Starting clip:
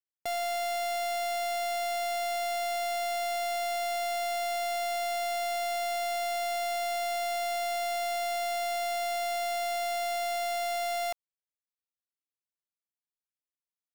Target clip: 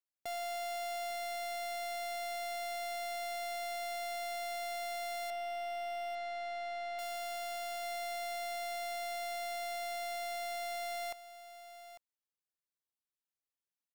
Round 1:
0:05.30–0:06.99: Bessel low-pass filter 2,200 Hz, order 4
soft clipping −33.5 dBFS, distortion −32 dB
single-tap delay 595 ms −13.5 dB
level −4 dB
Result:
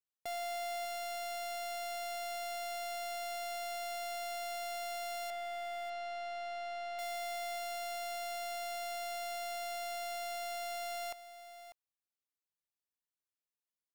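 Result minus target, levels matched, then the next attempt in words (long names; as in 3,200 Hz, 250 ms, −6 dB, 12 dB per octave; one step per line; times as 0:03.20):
echo 253 ms early
0:05.30–0:06.99: Bessel low-pass filter 2,200 Hz, order 4
soft clipping −33.5 dBFS, distortion −32 dB
single-tap delay 848 ms −13.5 dB
level −4 dB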